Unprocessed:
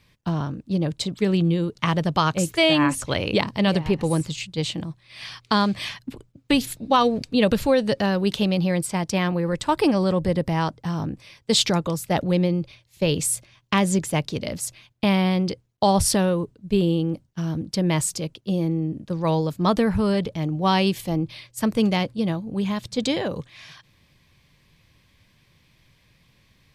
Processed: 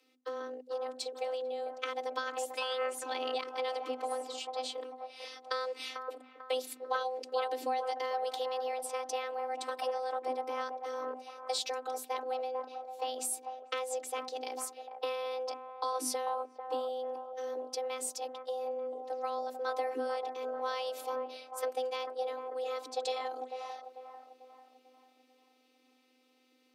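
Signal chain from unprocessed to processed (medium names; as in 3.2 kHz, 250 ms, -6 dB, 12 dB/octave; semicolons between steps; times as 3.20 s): compression, threshold -21 dBFS, peak gain reduction 8.5 dB; feedback echo behind a band-pass 444 ms, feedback 43%, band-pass 580 Hz, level -4 dB; robot voice 261 Hz; frequency shift +250 Hz; trim -8 dB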